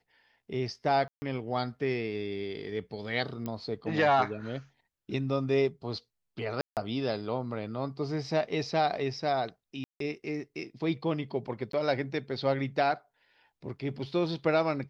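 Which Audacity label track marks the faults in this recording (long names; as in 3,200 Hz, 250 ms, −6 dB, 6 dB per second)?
1.080000	1.220000	drop-out 140 ms
3.460000	3.460000	click −22 dBFS
6.610000	6.770000	drop-out 158 ms
9.840000	10.000000	drop-out 163 ms
11.720000	11.730000	drop-out 13 ms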